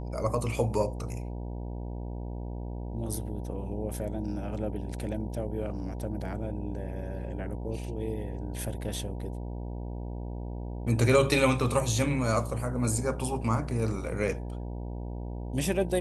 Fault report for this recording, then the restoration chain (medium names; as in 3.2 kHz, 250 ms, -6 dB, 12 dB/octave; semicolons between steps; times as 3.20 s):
buzz 60 Hz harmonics 16 -36 dBFS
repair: de-hum 60 Hz, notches 16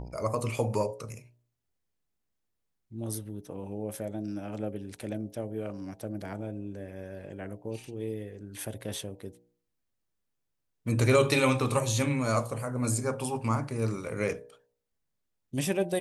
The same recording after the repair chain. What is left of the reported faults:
nothing left